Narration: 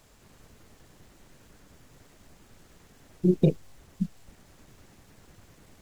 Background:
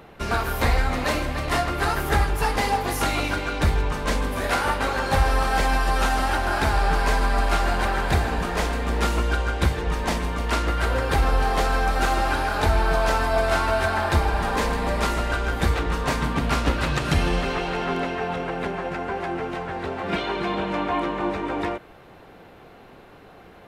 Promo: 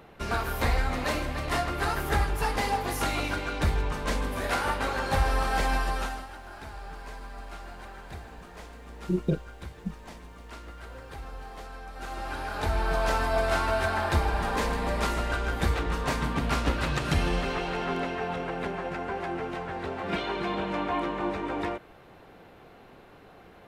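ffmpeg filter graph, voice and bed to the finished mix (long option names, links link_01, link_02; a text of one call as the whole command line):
ffmpeg -i stem1.wav -i stem2.wav -filter_complex "[0:a]adelay=5850,volume=-5.5dB[link_01];[1:a]volume=11dB,afade=type=out:start_time=5.77:duration=0.5:silence=0.16788,afade=type=in:start_time=11.92:duration=1.22:silence=0.158489[link_02];[link_01][link_02]amix=inputs=2:normalize=0" out.wav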